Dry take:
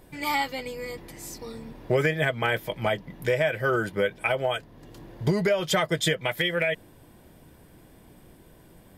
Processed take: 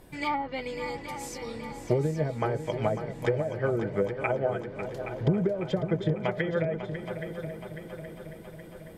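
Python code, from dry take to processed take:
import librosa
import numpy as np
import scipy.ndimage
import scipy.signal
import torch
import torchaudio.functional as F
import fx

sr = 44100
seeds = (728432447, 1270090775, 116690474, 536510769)

y = fx.env_lowpass_down(x, sr, base_hz=380.0, full_db=-19.5)
y = fx.echo_heads(y, sr, ms=274, heads='second and third', feedback_pct=59, wet_db=-10.5)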